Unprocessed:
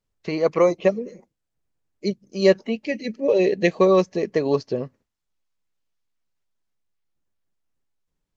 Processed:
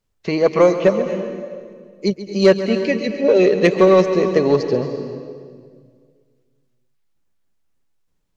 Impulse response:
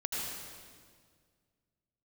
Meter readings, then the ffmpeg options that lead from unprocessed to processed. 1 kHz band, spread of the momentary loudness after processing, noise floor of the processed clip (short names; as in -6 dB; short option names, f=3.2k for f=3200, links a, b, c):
+5.0 dB, 17 LU, -67 dBFS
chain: -filter_complex "[0:a]acontrast=74,asplit=2[a][b];[1:a]atrim=start_sample=2205,adelay=136[c];[b][c]afir=irnorm=-1:irlink=0,volume=-12dB[d];[a][d]amix=inputs=2:normalize=0,volume=-1dB"